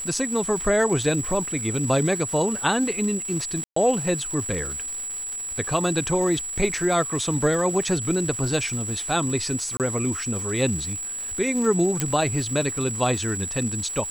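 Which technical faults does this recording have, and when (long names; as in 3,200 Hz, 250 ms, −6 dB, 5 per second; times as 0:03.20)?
surface crackle 470 per second −32 dBFS
whistle 7,800 Hz −29 dBFS
0:03.64–0:03.76: drop-out 124 ms
0:09.77–0:09.80: drop-out 28 ms
0:12.00: click −8 dBFS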